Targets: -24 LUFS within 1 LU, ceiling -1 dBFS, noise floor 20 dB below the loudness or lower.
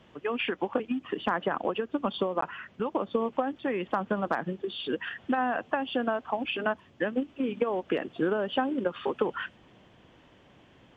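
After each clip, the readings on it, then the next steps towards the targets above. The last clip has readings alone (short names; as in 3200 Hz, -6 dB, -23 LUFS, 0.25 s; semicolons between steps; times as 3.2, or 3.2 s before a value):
dropouts 1; longest dropout 14 ms; loudness -31.0 LUFS; peak -15.0 dBFS; loudness target -24.0 LUFS
-> interpolate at 2.41, 14 ms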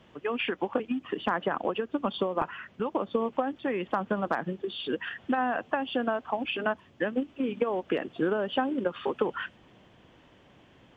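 dropouts 0; loudness -31.0 LUFS; peak -15.0 dBFS; loudness target -24.0 LUFS
-> gain +7 dB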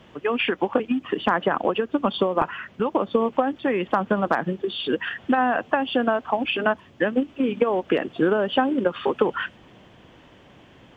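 loudness -24.0 LUFS; peak -8.0 dBFS; noise floor -52 dBFS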